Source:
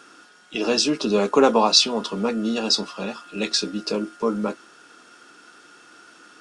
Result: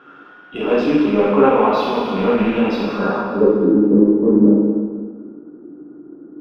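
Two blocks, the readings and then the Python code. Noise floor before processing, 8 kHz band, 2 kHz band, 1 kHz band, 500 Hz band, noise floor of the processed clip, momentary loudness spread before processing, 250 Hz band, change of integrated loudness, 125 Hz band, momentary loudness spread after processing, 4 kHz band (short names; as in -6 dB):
-51 dBFS, under -20 dB, +3.5 dB, +5.0 dB, +7.5 dB, -43 dBFS, 15 LU, +11.0 dB, +6.0 dB, +11.0 dB, 13 LU, -12.5 dB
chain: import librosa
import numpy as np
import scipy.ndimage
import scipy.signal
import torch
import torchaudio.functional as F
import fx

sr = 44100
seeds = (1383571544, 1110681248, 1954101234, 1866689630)

p1 = fx.rattle_buzz(x, sr, strikes_db=-28.0, level_db=-18.0)
p2 = fx.filter_sweep_lowpass(p1, sr, from_hz=3300.0, to_hz=320.0, start_s=2.79, end_s=3.52, q=3.6)
p3 = 10.0 ** (-16.5 / 20.0) * np.tanh(p2 / 10.0 ** (-16.5 / 20.0))
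p4 = p2 + (p3 * 10.0 ** (-8.5 / 20.0))
p5 = fx.low_shelf(p4, sr, hz=140.0, db=4.0)
p6 = fx.rev_plate(p5, sr, seeds[0], rt60_s=1.7, hf_ratio=0.95, predelay_ms=0, drr_db=-6.0)
p7 = fx.rider(p6, sr, range_db=3, speed_s=0.5)
p8 = fx.curve_eq(p7, sr, hz=(1400.0, 4000.0, 8800.0), db=(0, -23, -18))
p9 = fx.end_taper(p8, sr, db_per_s=210.0)
y = p9 * 10.0 ** (-2.5 / 20.0)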